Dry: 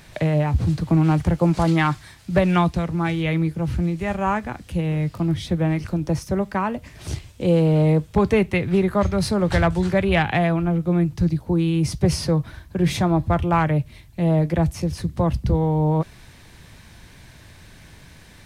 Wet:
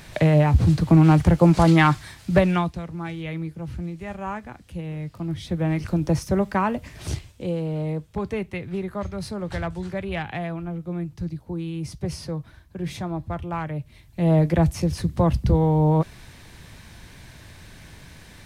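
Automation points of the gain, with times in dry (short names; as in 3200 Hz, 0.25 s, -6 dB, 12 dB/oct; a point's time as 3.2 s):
2.3 s +3 dB
2.77 s -9 dB
5.12 s -9 dB
5.95 s +1 dB
7.09 s +1 dB
7.56 s -10 dB
13.74 s -10 dB
14.33 s +1 dB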